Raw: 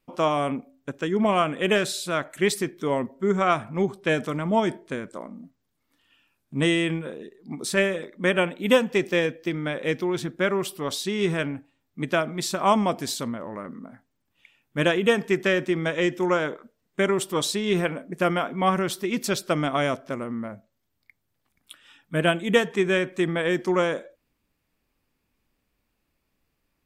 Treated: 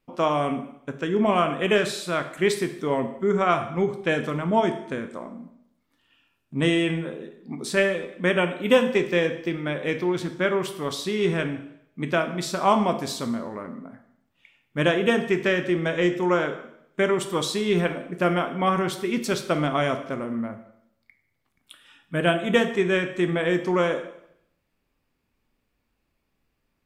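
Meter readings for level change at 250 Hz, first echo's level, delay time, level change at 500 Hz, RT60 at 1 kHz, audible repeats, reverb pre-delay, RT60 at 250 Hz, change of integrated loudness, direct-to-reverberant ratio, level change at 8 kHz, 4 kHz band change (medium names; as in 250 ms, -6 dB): +0.5 dB, no echo, no echo, +1.0 dB, 0.70 s, no echo, 6 ms, 0.75 s, +0.5 dB, 7.0 dB, -3.5 dB, -1.0 dB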